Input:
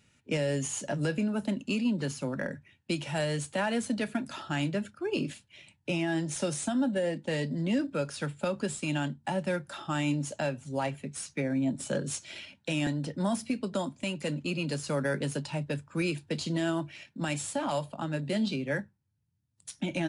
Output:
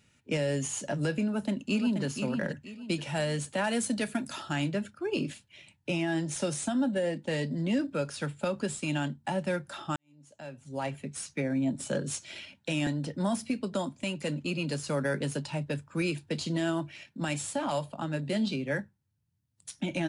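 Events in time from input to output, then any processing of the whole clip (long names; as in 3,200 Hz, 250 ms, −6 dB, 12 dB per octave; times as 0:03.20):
0:01.23–0:02.04: delay throw 480 ms, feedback 35%, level −6.5 dB
0:03.64–0:04.53: high-shelf EQ 6,600 Hz +11.5 dB
0:09.96–0:10.96: fade in quadratic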